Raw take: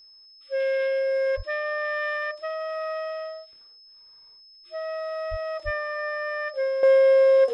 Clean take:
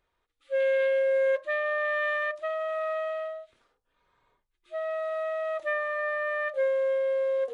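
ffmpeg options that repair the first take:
-filter_complex "[0:a]bandreject=f=5.2k:w=30,asplit=3[a][b][c];[a]afade=t=out:st=1.36:d=0.02[d];[b]highpass=f=140:w=0.5412,highpass=f=140:w=1.3066,afade=t=in:st=1.36:d=0.02,afade=t=out:st=1.48:d=0.02[e];[c]afade=t=in:st=1.48:d=0.02[f];[d][e][f]amix=inputs=3:normalize=0,asplit=3[g][h][i];[g]afade=t=out:st=5.3:d=0.02[j];[h]highpass=f=140:w=0.5412,highpass=f=140:w=1.3066,afade=t=in:st=5.3:d=0.02,afade=t=out:st=5.42:d=0.02[k];[i]afade=t=in:st=5.42:d=0.02[l];[j][k][l]amix=inputs=3:normalize=0,asplit=3[m][n][o];[m]afade=t=out:st=5.64:d=0.02[p];[n]highpass=f=140:w=0.5412,highpass=f=140:w=1.3066,afade=t=in:st=5.64:d=0.02,afade=t=out:st=5.76:d=0.02[q];[o]afade=t=in:st=5.76:d=0.02[r];[p][q][r]amix=inputs=3:normalize=0,asetnsamples=n=441:p=0,asendcmd='6.83 volume volume -10dB',volume=0dB"

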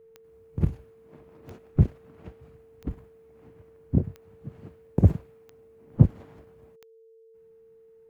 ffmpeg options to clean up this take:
-af "adeclick=t=4,bandreject=f=450:w=30"

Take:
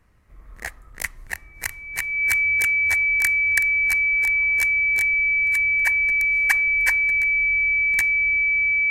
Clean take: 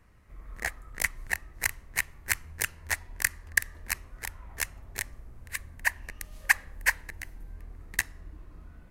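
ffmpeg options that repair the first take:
-af "bandreject=f=2.3k:w=30"

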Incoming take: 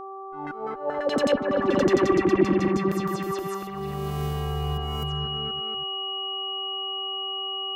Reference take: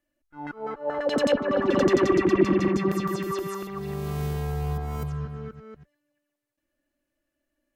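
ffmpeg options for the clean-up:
-af "bandreject=f=387.6:t=h:w=4,bandreject=f=775.2:t=h:w=4,bandreject=f=1.1628k:t=h:w=4,bandreject=f=2.9k:w=30"

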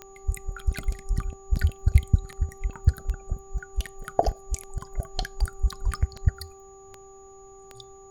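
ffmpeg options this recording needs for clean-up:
-af "adeclick=t=4,bandreject=f=389.7:t=h:w=4,bandreject=f=779.4:t=h:w=4,bandreject=f=1.1691k:t=h:w=4,bandreject=f=6.8k:w=30,agate=range=-21dB:threshold=-40dB"

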